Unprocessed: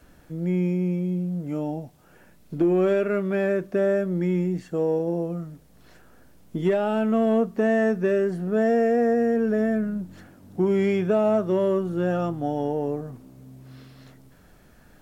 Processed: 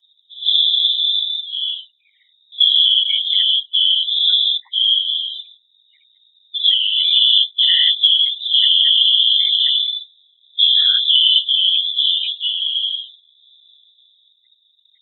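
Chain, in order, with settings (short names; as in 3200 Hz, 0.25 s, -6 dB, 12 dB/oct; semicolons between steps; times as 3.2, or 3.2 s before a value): notch 2400 Hz, Q 26; loudest bins only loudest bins 8; inverted band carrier 3700 Hz; whisperiser; spectral noise reduction 13 dB; gain +7.5 dB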